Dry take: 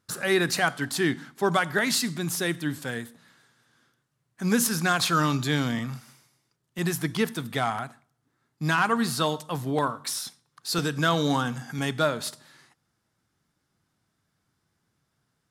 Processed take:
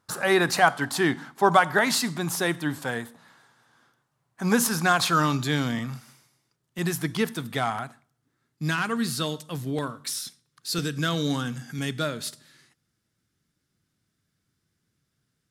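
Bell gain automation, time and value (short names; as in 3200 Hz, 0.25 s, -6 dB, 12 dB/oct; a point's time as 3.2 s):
bell 870 Hz 1.2 oct
4.52 s +9.5 dB
5.52 s 0 dB
7.81 s 0 dB
8.99 s -10.5 dB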